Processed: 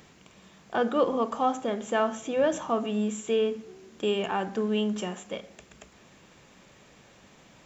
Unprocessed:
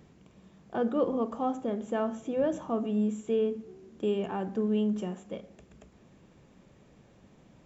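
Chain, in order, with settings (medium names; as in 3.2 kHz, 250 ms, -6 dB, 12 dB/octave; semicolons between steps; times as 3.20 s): tilt shelf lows -7.5 dB, about 690 Hz; trim +5.5 dB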